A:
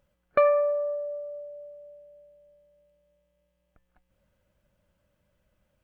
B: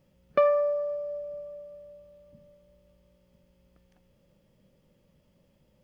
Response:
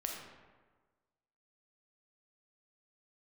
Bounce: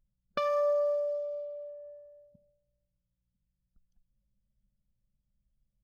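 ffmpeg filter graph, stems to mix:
-filter_complex "[0:a]acompressor=threshold=-27dB:ratio=2,volume=2.5dB[a];[1:a]equalizer=f=125:t=o:w=1:g=11,equalizer=f=250:t=o:w=1:g=5,equalizer=f=500:t=o:w=1:g=-12,equalizer=f=1k:t=o:w=1:g=10,equalizer=f=2k:t=o:w=1:g=-10,aexciter=amount=10.7:drive=9.1:freq=2.3k,volume=-8.5dB[b];[a][b]amix=inputs=2:normalize=0,anlmdn=0.1,alimiter=limit=-18dB:level=0:latency=1:release=310"

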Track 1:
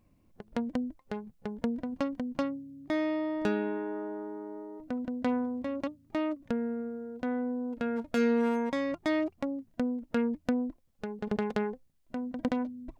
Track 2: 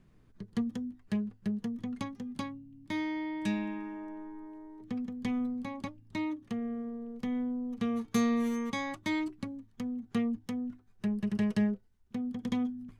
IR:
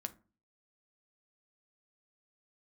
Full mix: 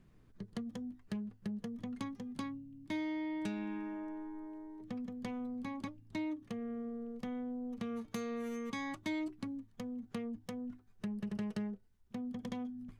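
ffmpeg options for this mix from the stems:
-filter_complex "[0:a]volume=-19dB[a];[1:a]acompressor=threshold=-34dB:ratio=5,asoftclip=type=tanh:threshold=-28.5dB,volume=-1.5dB[b];[a][b]amix=inputs=2:normalize=0"

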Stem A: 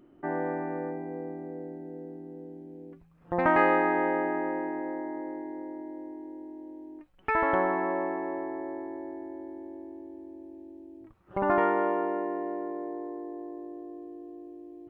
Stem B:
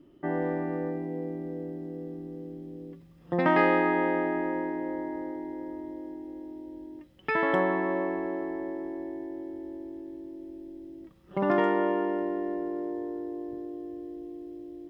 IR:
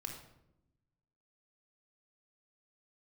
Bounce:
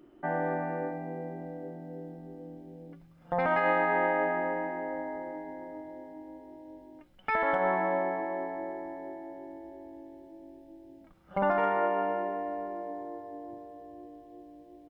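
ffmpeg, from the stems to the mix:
-filter_complex "[0:a]equalizer=f=110:t=o:w=1.9:g=-14.5,alimiter=limit=-19dB:level=0:latency=1:release=96,volume=1.5dB[a];[1:a]bandreject=f=1.3k:w=12,alimiter=limit=-20dB:level=0:latency=1,flanger=delay=2.1:depth=9.9:regen=-58:speed=0.4:shape=triangular,adelay=0.5,volume=-1dB[b];[a][b]amix=inputs=2:normalize=0"

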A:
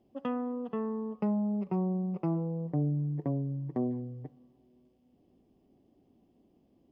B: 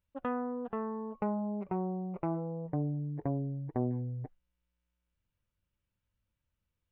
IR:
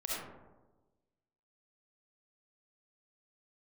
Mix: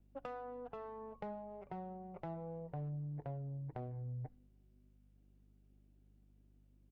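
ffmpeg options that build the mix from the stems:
-filter_complex "[0:a]asoftclip=type=hard:threshold=-23.5dB,adynamicsmooth=sensitivity=7:basefreq=870,volume=-12.5dB[a];[1:a]acompressor=threshold=-39dB:ratio=6,aeval=exprs='val(0)+0.000631*(sin(2*PI*50*n/s)+sin(2*PI*2*50*n/s)/2+sin(2*PI*3*50*n/s)/3+sin(2*PI*4*50*n/s)/4+sin(2*PI*5*50*n/s)/5)':c=same,asoftclip=type=tanh:threshold=-29.5dB,adelay=3.2,volume=-1.5dB[b];[a][b]amix=inputs=2:normalize=0"

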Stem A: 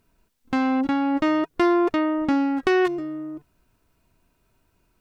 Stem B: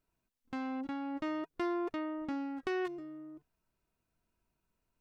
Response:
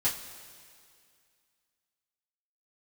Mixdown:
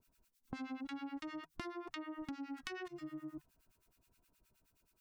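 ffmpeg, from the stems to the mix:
-filter_complex "[0:a]highshelf=f=2.7k:g=12,acrossover=split=430[a][b];[b]acompressor=threshold=-26dB:ratio=6[c];[a][c]amix=inputs=2:normalize=0,volume=-9dB[d];[1:a]dynaudnorm=f=250:g=9:m=12.5dB,volume=-5.5dB[e];[d][e]amix=inputs=2:normalize=0,acrossover=split=1100[f][g];[f]aeval=exprs='val(0)*(1-1/2+1/2*cos(2*PI*9.5*n/s))':c=same[h];[g]aeval=exprs='val(0)*(1-1/2-1/2*cos(2*PI*9.5*n/s))':c=same[i];[h][i]amix=inputs=2:normalize=0,acompressor=threshold=-41dB:ratio=12"

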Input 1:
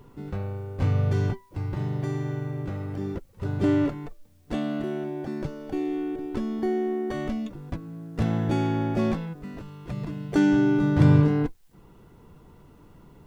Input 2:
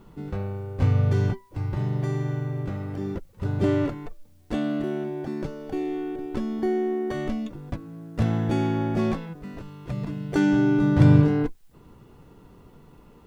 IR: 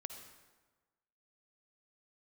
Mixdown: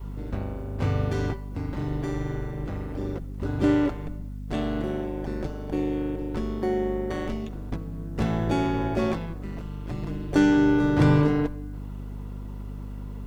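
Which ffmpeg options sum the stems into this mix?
-filter_complex "[0:a]highpass=f=210:p=1,aeval=exprs='val(0)+0.0126*(sin(2*PI*50*n/s)+sin(2*PI*2*50*n/s)/2+sin(2*PI*3*50*n/s)/3+sin(2*PI*4*50*n/s)/4+sin(2*PI*5*50*n/s)/5)':c=same,volume=3dB,asplit=2[a][b];[b]volume=-8.5dB[c];[1:a]acompressor=threshold=-25dB:ratio=6,tremolo=f=170:d=0.947,volume=-1,volume=3dB[d];[2:a]atrim=start_sample=2205[e];[c][e]afir=irnorm=-1:irlink=0[f];[a][d][f]amix=inputs=3:normalize=0,adynamicequalizer=threshold=0.0178:dfrequency=190:dqfactor=1.4:tfrequency=190:tqfactor=1.4:attack=5:release=100:ratio=0.375:range=2:mode=cutabove:tftype=bell"

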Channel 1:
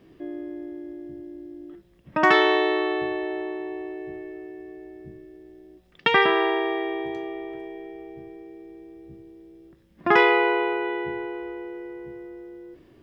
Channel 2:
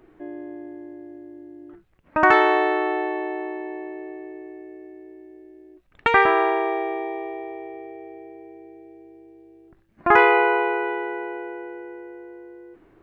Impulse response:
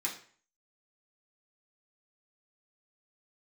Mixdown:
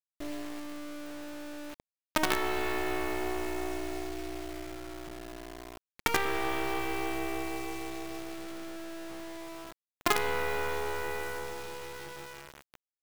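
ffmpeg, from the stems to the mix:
-filter_complex "[0:a]bandreject=f=490:w=12,acompressor=threshold=-32dB:ratio=2,volume=-5.5dB,asplit=2[a][b];[b]volume=-3dB[c];[1:a]bandreject=f=50:t=h:w=6,bandreject=f=100:t=h:w=6,bandreject=f=150:t=h:w=6,bandreject=f=200:t=h:w=6,bandreject=f=250:t=h:w=6,bandreject=f=300:t=h:w=6,bandreject=f=350:t=h:w=6,adynamicequalizer=threshold=0.0224:dfrequency=400:dqfactor=2.8:tfrequency=400:tqfactor=2.8:attack=5:release=100:ratio=0.375:range=2:mode=boostabove:tftype=bell,volume=-0.5dB,asplit=2[d][e];[e]volume=-9dB[f];[2:a]atrim=start_sample=2205[g];[c][f]amix=inputs=2:normalize=0[h];[h][g]afir=irnorm=-1:irlink=0[i];[a][d][i]amix=inputs=3:normalize=0,acrossover=split=470|3000[j][k][l];[j]acompressor=threshold=-31dB:ratio=4[m];[k]acompressor=threshold=-31dB:ratio=4[n];[l]acompressor=threshold=-41dB:ratio=4[o];[m][n][o]amix=inputs=3:normalize=0,acrusher=bits=4:dc=4:mix=0:aa=0.000001"

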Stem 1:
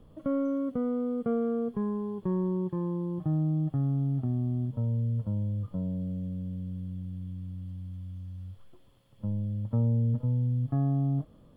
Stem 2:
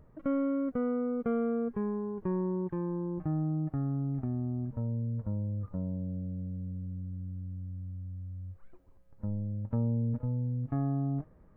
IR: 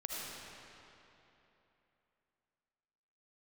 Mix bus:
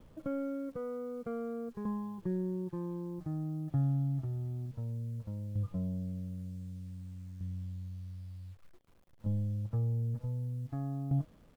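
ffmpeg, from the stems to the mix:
-filter_complex "[0:a]aeval=exprs='val(0)*pow(10,-25*if(lt(mod(0.54*n/s,1),2*abs(0.54)/1000),1-mod(0.54*n/s,1)/(2*abs(0.54)/1000),(mod(0.54*n/s,1)-2*abs(0.54)/1000)/(1-2*abs(0.54)/1000))/20)':c=same,volume=-2.5dB[a];[1:a]acrusher=bits=9:mix=0:aa=0.000001,adelay=6.7,volume=-7.5dB[b];[a][b]amix=inputs=2:normalize=0"

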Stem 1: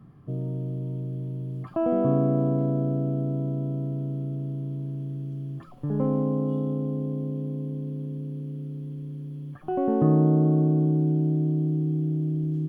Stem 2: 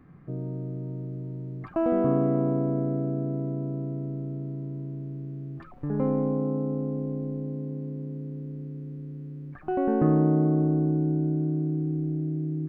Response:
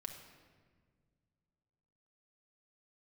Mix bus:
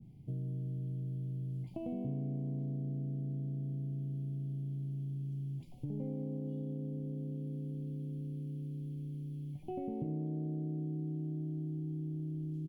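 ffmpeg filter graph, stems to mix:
-filter_complex "[0:a]bandreject=f=50:t=h:w=6,bandreject=f=100:t=h:w=6,bandreject=f=150:t=h:w=6,adynamicequalizer=threshold=0.00891:dfrequency=1500:dqfactor=0.7:tfrequency=1500:tqfactor=0.7:attack=5:release=100:ratio=0.375:range=1.5:mode=cutabove:tftype=highshelf,volume=0dB[a];[1:a]volume=-1,adelay=19,volume=-9dB[b];[a][b]amix=inputs=2:normalize=0,asuperstop=centerf=1400:order=12:qfactor=1.2,equalizer=f=770:w=0.42:g=-14,acompressor=threshold=-38dB:ratio=3"

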